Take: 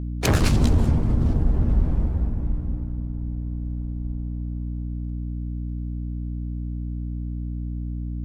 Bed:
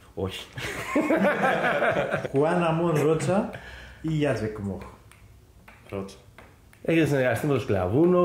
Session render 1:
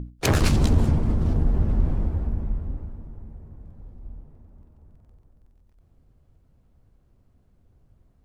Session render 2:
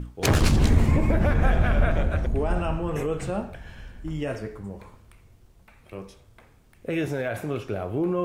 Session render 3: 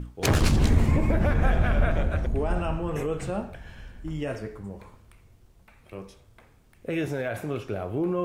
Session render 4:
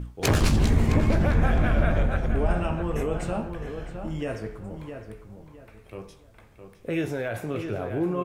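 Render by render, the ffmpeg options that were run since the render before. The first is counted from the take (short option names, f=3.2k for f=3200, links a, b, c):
-af "bandreject=f=60:t=h:w=6,bandreject=f=120:t=h:w=6,bandreject=f=180:t=h:w=6,bandreject=f=240:t=h:w=6,bandreject=f=300:t=h:w=6"
-filter_complex "[1:a]volume=-5.5dB[a];[0:a][a]amix=inputs=2:normalize=0"
-af "volume=-1.5dB"
-filter_complex "[0:a]asplit=2[a][b];[b]adelay=18,volume=-11.5dB[c];[a][c]amix=inputs=2:normalize=0,asplit=2[d][e];[e]adelay=662,lowpass=f=2.6k:p=1,volume=-7.5dB,asplit=2[f][g];[g]adelay=662,lowpass=f=2.6k:p=1,volume=0.3,asplit=2[h][i];[i]adelay=662,lowpass=f=2.6k:p=1,volume=0.3,asplit=2[j][k];[k]adelay=662,lowpass=f=2.6k:p=1,volume=0.3[l];[f][h][j][l]amix=inputs=4:normalize=0[m];[d][m]amix=inputs=2:normalize=0"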